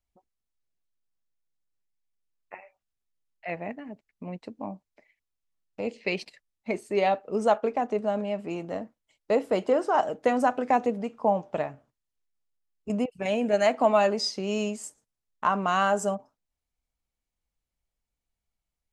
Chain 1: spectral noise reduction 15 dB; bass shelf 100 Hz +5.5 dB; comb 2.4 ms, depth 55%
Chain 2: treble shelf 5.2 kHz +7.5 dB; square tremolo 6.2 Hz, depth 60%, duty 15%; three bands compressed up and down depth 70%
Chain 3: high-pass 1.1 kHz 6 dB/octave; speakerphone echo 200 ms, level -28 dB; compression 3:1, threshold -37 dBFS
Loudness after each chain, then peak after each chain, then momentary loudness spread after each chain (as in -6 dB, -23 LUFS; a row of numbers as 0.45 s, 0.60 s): -26.5 LUFS, -33.5 LUFS, -41.0 LUFS; -8.5 dBFS, -13.0 dBFS, -21.5 dBFS; 18 LU, 12 LU, 14 LU